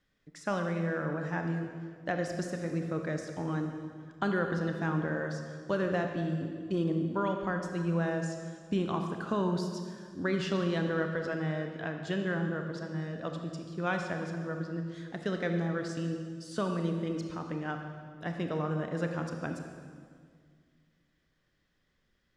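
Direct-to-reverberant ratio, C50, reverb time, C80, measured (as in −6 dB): 4.0 dB, 5.0 dB, 2.0 s, 6.0 dB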